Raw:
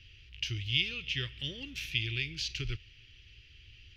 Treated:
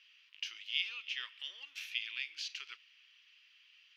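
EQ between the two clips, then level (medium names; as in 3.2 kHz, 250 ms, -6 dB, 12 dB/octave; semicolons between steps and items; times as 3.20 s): ladder high-pass 910 Hz, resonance 60%; +4.5 dB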